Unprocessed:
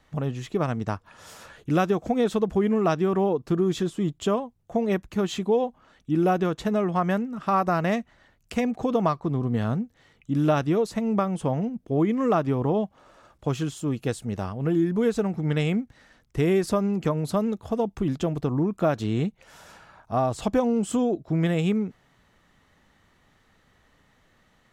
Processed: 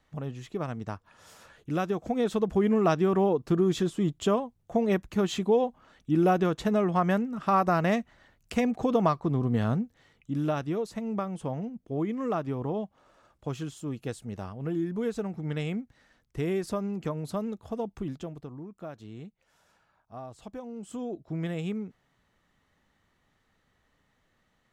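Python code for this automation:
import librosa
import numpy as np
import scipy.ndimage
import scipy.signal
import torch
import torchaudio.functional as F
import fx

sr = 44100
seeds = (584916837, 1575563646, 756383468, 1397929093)

y = fx.gain(x, sr, db=fx.line((1.69, -7.5), (2.71, -1.0), (9.76, -1.0), (10.55, -7.5), (17.99, -7.5), (18.59, -18.0), (20.66, -18.0), (21.2, -9.0)))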